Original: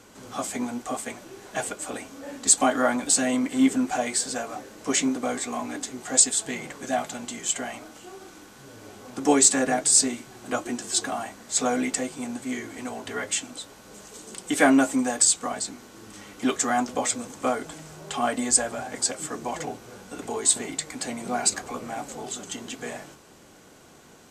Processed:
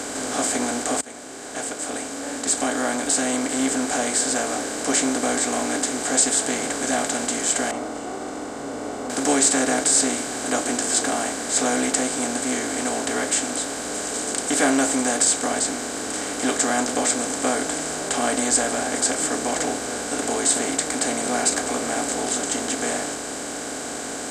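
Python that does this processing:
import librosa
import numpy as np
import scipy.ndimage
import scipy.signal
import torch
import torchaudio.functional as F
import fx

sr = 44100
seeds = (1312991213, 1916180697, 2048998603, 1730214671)

y = fx.savgol(x, sr, points=65, at=(7.71, 9.1))
y = fx.edit(y, sr, fx.fade_in_span(start_s=1.01, length_s=3.78), tone=tone)
y = fx.bin_compress(y, sr, power=0.4)
y = fx.peak_eq(y, sr, hz=61.0, db=9.0, octaves=0.46)
y = F.gain(torch.from_numpy(y), -4.5).numpy()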